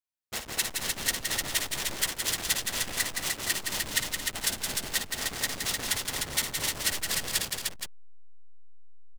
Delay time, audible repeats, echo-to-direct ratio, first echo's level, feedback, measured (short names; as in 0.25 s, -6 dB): 56 ms, 5, 0.0 dB, -9.5 dB, no steady repeat